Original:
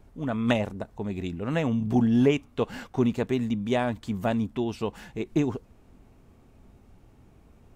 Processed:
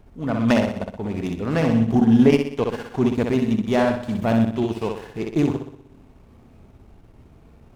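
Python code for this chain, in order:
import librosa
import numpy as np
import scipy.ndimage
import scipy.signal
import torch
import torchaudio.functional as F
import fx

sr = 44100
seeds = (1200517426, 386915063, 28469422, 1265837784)

y = fx.room_flutter(x, sr, wall_m=10.6, rt60_s=0.8)
y = fx.transient(y, sr, attack_db=-4, sustain_db=-8)
y = fx.running_max(y, sr, window=5)
y = y * librosa.db_to_amplitude(5.5)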